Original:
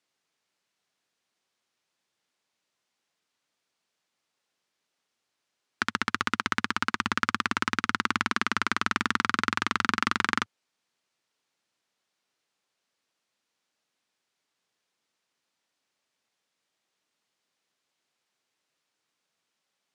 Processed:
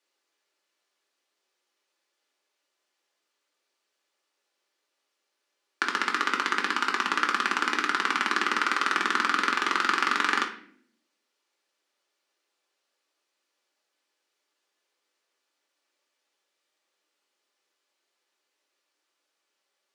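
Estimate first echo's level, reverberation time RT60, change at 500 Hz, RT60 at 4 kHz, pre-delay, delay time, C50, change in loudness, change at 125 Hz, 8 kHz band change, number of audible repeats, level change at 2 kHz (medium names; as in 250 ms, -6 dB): no echo, 0.60 s, +4.0 dB, 0.45 s, 3 ms, no echo, 9.0 dB, +2.0 dB, under -10 dB, +1.0 dB, no echo, +2.0 dB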